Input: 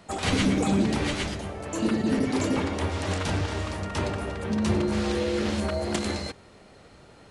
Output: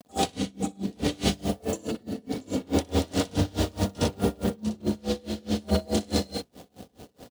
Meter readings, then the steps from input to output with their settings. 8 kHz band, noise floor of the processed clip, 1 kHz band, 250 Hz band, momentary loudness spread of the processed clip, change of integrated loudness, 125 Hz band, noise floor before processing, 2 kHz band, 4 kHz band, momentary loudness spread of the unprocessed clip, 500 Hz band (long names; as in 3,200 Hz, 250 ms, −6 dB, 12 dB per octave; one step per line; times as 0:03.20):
0.0 dB, −63 dBFS, −2.0 dB, −2.0 dB, 8 LU, −2.0 dB, −2.0 dB, −52 dBFS, −8.0 dB, −0.5 dB, 8 LU, −1.0 dB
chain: hold until the input has moved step −45 dBFS
high-pass filter 74 Hz
flat-topped bell 1,500 Hz −9 dB
comb filter 4.1 ms, depth 38%
compressor whose output falls as the input rises −30 dBFS, ratio −1
on a send: loudspeakers that aren't time-aligned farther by 21 metres −2 dB, 35 metres −6 dB
on the sum: tremolo with a sine in dB 4.7 Hz, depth 29 dB
level +4.5 dB